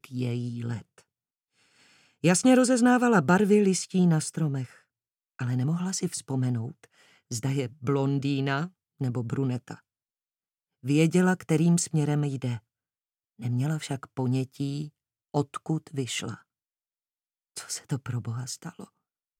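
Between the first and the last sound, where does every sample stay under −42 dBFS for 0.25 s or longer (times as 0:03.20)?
0:00.99–0:02.24
0:04.70–0:05.39
0:06.84–0:07.31
0:08.68–0:09.01
0:09.76–0:10.84
0:12.58–0:13.40
0:14.88–0:15.34
0:16.36–0:17.56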